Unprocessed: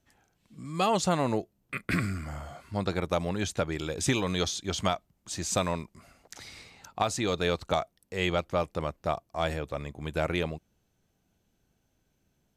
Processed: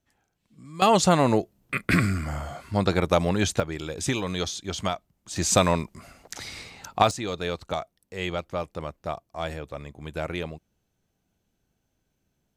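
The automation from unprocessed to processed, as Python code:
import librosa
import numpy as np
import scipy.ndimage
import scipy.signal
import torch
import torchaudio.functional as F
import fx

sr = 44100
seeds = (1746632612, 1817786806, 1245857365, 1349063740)

y = fx.gain(x, sr, db=fx.steps((0.0, -5.0), (0.82, 7.0), (3.6, 0.0), (5.36, 8.0), (7.11, -2.0)))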